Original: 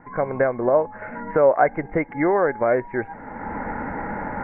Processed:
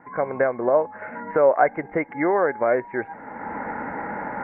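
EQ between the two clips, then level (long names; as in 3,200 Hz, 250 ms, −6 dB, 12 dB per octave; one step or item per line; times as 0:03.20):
high-pass filter 260 Hz 6 dB per octave
0.0 dB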